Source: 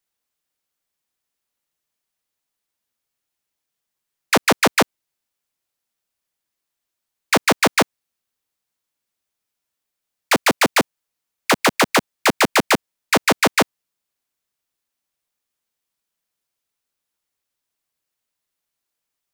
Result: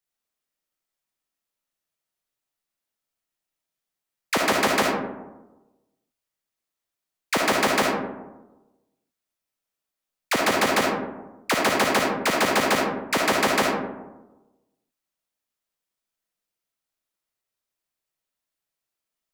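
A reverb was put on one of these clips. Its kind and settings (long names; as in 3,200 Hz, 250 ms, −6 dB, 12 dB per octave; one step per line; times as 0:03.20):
comb and all-pass reverb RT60 1.1 s, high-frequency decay 0.35×, pre-delay 15 ms, DRR −1.5 dB
level −7.5 dB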